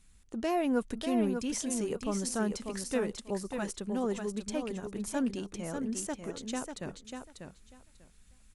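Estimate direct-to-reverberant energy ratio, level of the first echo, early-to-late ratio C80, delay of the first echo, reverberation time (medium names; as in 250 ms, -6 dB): no reverb, -6.5 dB, no reverb, 593 ms, no reverb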